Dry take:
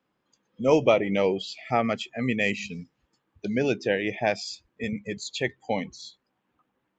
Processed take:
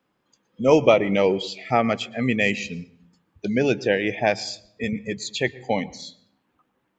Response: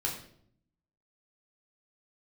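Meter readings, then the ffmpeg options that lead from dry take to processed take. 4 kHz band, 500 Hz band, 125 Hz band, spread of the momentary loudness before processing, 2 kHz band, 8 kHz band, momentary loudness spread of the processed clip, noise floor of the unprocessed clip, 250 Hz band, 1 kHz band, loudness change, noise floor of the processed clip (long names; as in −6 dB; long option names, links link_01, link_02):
+4.0 dB, +4.0 dB, +4.0 dB, 15 LU, +4.0 dB, can't be measured, 15 LU, −77 dBFS, +4.0 dB, +4.0 dB, +4.0 dB, −73 dBFS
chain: -filter_complex "[0:a]asplit=2[link_01][link_02];[1:a]atrim=start_sample=2205,highshelf=frequency=4800:gain=-8.5,adelay=113[link_03];[link_02][link_03]afir=irnorm=-1:irlink=0,volume=-24dB[link_04];[link_01][link_04]amix=inputs=2:normalize=0,volume=4dB"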